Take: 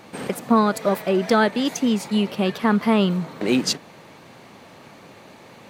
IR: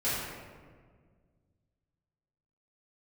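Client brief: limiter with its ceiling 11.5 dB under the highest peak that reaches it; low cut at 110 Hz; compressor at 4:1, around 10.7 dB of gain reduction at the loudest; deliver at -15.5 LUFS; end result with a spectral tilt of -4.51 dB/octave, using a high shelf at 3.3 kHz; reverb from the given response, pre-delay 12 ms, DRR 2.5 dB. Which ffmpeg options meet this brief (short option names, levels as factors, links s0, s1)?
-filter_complex "[0:a]highpass=110,highshelf=f=3300:g=7,acompressor=threshold=0.0562:ratio=4,alimiter=limit=0.0708:level=0:latency=1,asplit=2[s0][s1];[1:a]atrim=start_sample=2205,adelay=12[s2];[s1][s2]afir=irnorm=-1:irlink=0,volume=0.251[s3];[s0][s3]amix=inputs=2:normalize=0,volume=5.62"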